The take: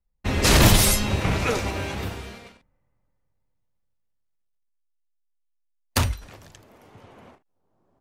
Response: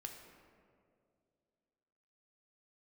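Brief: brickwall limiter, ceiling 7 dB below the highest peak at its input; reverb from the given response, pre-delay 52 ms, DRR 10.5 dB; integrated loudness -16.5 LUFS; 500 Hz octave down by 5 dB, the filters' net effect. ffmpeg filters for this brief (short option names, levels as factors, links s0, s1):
-filter_complex "[0:a]equalizer=f=500:t=o:g=-6.5,alimiter=limit=0.299:level=0:latency=1,asplit=2[s0][s1];[1:a]atrim=start_sample=2205,adelay=52[s2];[s1][s2]afir=irnorm=-1:irlink=0,volume=0.473[s3];[s0][s3]amix=inputs=2:normalize=0,volume=2.37"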